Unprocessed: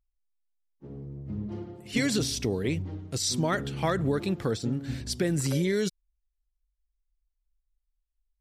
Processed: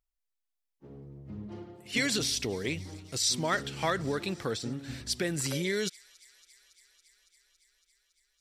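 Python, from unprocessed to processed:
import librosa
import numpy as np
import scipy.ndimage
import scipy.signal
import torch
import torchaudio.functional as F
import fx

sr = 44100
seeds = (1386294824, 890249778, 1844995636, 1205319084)

y = fx.low_shelf(x, sr, hz=420.0, db=-8.5)
y = fx.echo_wet_highpass(y, sr, ms=279, feedback_pct=78, hz=2200.0, wet_db=-21)
y = fx.dynamic_eq(y, sr, hz=2800.0, q=0.72, threshold_db=-43.0, ratio=4.0, max_db=3)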